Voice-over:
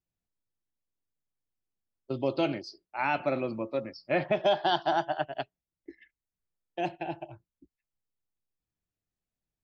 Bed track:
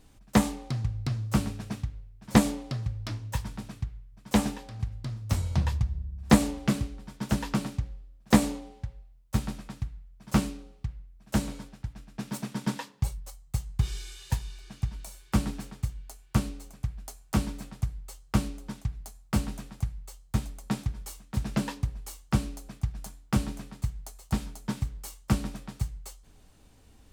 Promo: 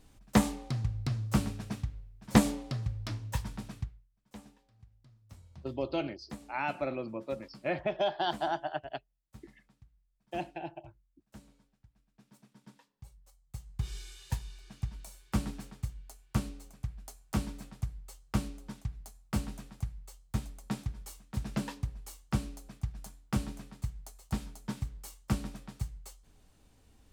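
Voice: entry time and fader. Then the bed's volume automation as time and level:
3.55 s, -5.0 dB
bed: 3.81 s -2.5 dB
4.15 s -25.5 dB
12.90 s -25.5 dB
13.96 s -5.5 dB

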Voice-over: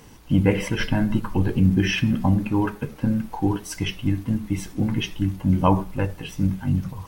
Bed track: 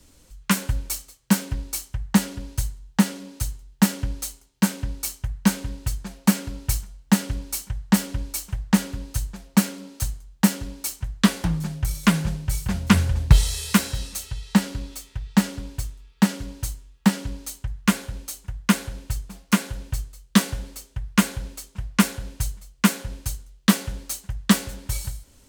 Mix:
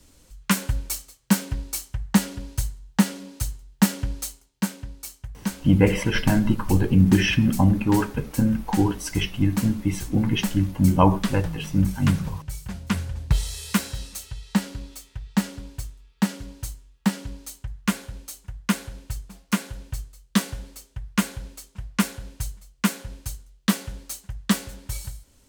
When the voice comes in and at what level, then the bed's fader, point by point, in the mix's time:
5.35 s, +1.5 dB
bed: 4.24 s -0.5 dB
4.91 s -8.5 dB
13.13 s -8.5 dB
13.77 s -4 dB

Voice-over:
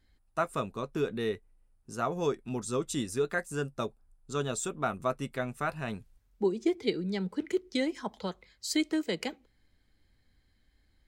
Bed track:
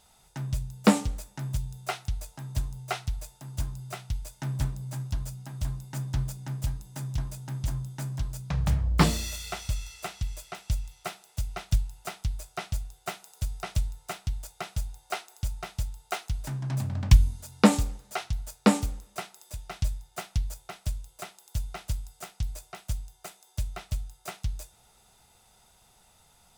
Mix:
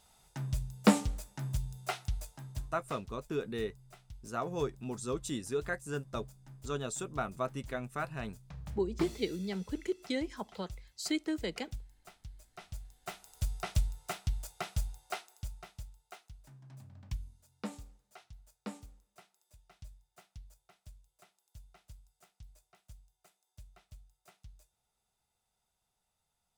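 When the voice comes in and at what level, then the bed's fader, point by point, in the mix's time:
2.35 s, -4.5 dB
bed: 2.24 s -4 dB
3.02 s -18.5 dB
12.35 s -18.5 dB
13.47 s -2.5 dB
14.86 s -2.5 dB
16.40 s -22.5 dB

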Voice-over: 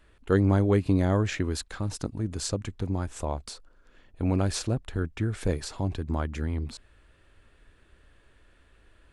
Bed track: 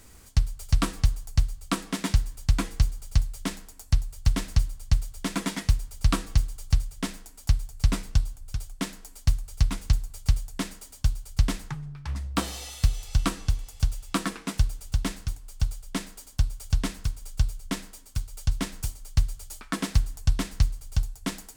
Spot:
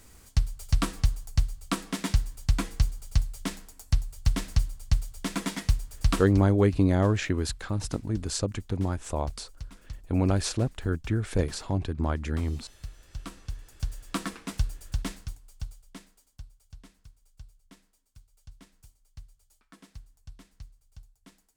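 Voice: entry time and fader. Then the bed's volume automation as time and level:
5.90 s, +1.0 dB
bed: 6.21 s -2 dB
6.45 s -18.5 dB
12.96 s -18.5 dB
14.08 s -4.5 dB
15.10 s -4.5 dB
16.66 s -24 dB

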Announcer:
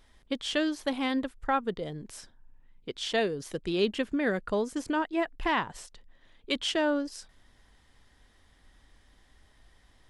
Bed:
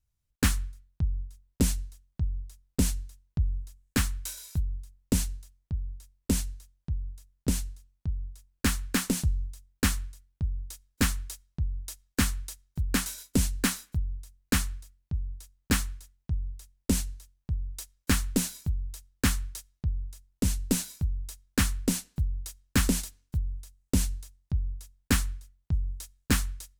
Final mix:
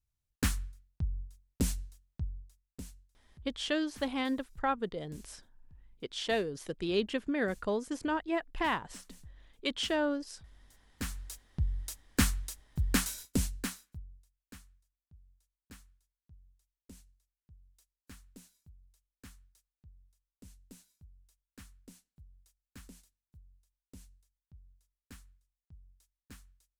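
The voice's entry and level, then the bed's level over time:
3.15 s, -3.5 dB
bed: 2.16 s -6 dB
3.09 s -26.5 dB
10.56 s -26.5 dB
11.42 s -1.5 dB
13.16 s -1.5 dB
14.62 s -28 dB

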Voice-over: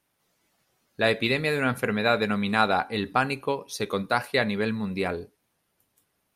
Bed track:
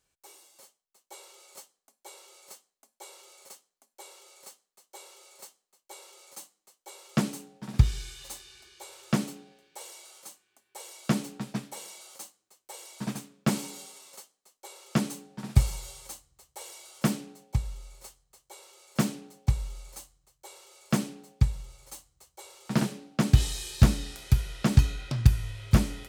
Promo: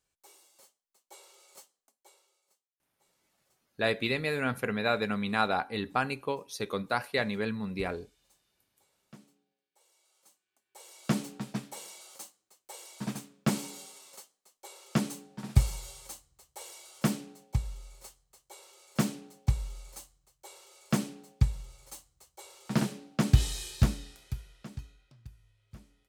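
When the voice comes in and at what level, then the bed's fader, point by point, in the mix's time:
2.80 s, -5.5 dB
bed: 1.84 s -5 dB
2.56 s -26.5 dB
9.69 s -26.5 dB
11.14 s -2 dB
23.63 s -2 dB
25.20 s -29.5 dB

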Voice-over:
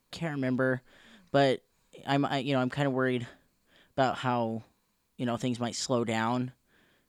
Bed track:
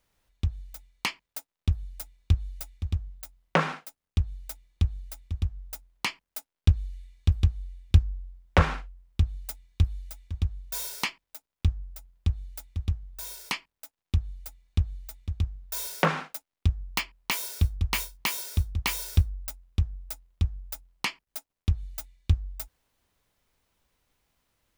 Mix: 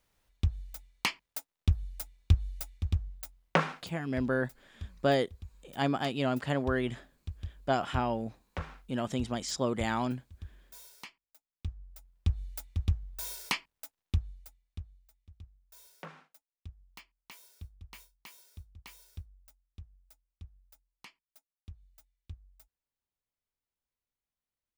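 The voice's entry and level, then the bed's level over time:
3.70 s, -2.0 dB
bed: 3.50 s -1 dB
4.09 s -18 dB
11.39 s -18 dB
12.41 s -0.5 dB
13.98 s -0.5 dB
15.05 s -23 dB

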